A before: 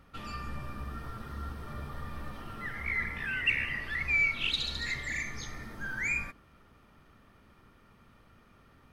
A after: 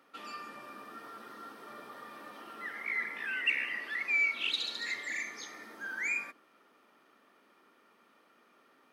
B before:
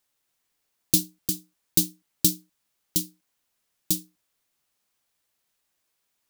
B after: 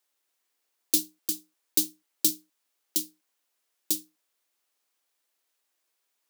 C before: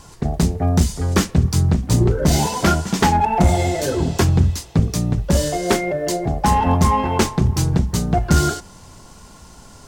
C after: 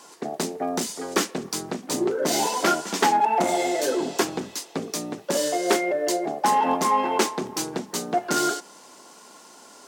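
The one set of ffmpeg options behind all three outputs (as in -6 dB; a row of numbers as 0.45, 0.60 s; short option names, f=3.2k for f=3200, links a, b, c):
-filter_complex "[0:a]highpass=f=280:w=0.5412,highpass=f=280:w=1.3066,asplit=2[a][b];[b]asoftclip=type=tanh:threshold=-14dB,volume=-8dB[c];[a][c]amix=inputs=2:normalize=0,volume=-4.5dB"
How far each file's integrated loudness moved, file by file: -0.5, -2.5, -6.0 LU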